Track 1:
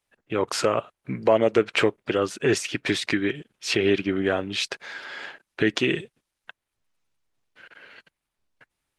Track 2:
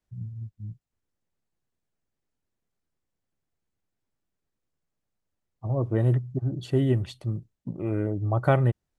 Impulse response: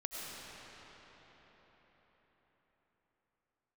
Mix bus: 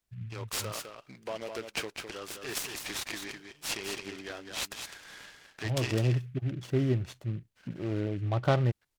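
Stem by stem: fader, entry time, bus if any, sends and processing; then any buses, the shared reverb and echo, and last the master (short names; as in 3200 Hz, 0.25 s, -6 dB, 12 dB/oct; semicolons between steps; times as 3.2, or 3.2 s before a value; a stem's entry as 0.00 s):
-1.5 dB, 0.00 s, no send, echo send -6.5 dB, pre-emphasis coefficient 0.9
-4.5 dB, 0.00 s, no send, no echo send, dry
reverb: off
echo: echo 0.207 s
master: noise-modulated delay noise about 2000 Hz, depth 0.04 ms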